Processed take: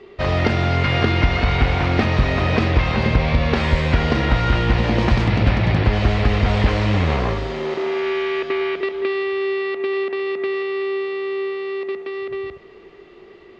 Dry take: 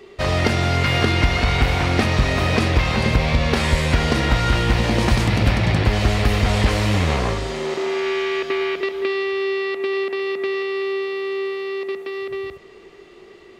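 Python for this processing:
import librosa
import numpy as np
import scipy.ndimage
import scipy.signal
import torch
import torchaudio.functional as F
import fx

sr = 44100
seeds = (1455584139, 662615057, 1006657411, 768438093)

y = fx.air_absorb(x, sr, metres=170.0)
y = y * 10.0 ** (1.0 / 20.0)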